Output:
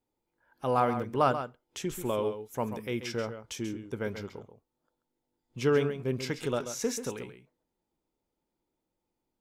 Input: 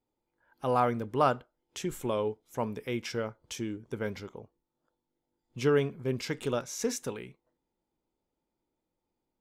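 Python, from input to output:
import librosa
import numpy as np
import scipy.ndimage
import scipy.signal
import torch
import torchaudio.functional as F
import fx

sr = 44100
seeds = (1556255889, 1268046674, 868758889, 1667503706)

y = fx.high_shelf(x, sr, hz=11000.0, db=10.0, at=(1.95, 2.86))
y = y + 10.0 ** (-10.0 / 20.0) * np.pad(y, (int(135 * sr / 1000.0), 0))[:len(y)]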